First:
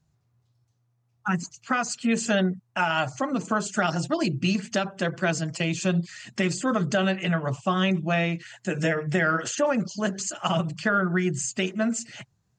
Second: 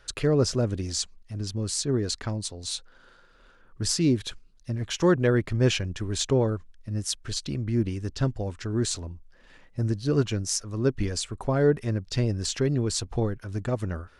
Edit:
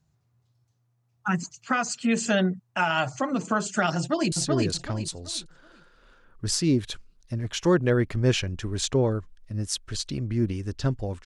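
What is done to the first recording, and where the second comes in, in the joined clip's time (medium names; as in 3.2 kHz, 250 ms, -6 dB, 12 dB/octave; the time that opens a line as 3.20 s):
first
3.98–4.32 s: echo throw 380 ms, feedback 30%, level -2.5 dB
4.32 s: go over to second from 1.69 s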